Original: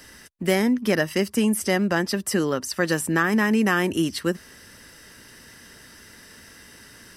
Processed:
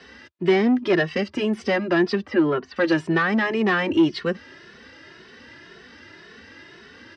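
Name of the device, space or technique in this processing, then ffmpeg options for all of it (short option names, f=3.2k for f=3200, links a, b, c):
barber-pole flanger into a guitar amplifier: -filter_complex "[0:a]asplit=2[a][b];[b]adelay=2.3,afreqshift=1.9[c];[a][c]amix=inputs=2:normalize=1,asoftclip=type=tanh:threshold=-19.5dB,highpass=88,equalizer=f=120:t=q:w=4:g=-5,equalizer=f=190:t=q:w=4:g=-4,equalizer=f=360:t=q:w=4:g=6,lowpass=f=4.2k:w=0.5412,lowpass=f=4.2k:w=1.3066,asettb=1/sr,asplit=3[d][e][f];[d]atrim=end=2.264[g];[e]atrim=start=2.26:end=2.76,asetpts=PTS-STARTPTS,afade=t=in:d=0.004:c=qsin,afade=t=out:st=0.496:d=0.004:c=qsin,lowpass=2.7k[h];[f]atrim=start=2.756[i];[g][h]acrossfade=d=0.004:c1=hsin:c2=qsin[j];[j][i]acrossfade=d=0.004:c1=qsin:c2=hsin,volume=6dB"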